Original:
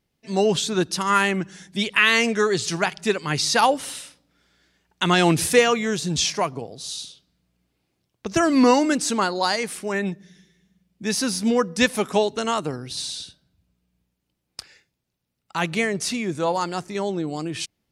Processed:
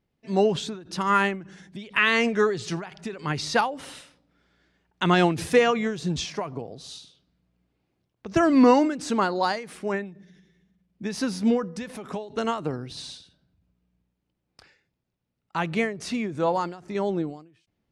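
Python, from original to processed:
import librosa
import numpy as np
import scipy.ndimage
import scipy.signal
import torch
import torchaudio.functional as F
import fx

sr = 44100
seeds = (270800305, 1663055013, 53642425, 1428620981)

y = fx.lowpass(x, sr, hz=1800.0, slope=6)
y = fx.end_taper(y, sr, db_per_s=110.0)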